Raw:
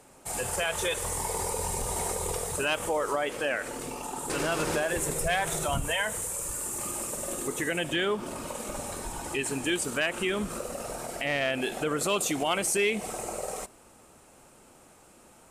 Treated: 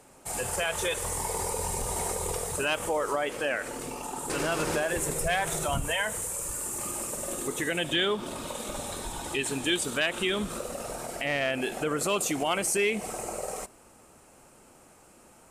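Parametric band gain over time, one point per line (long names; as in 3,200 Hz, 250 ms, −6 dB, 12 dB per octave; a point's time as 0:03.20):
parametric band 3,600 Hz 0.31 octaves
0:07.19 −1 dB
0:08.01 +11 dB
0:10.33 +11 dB
0:10.80 +3 dB
0:11.56 −4 dB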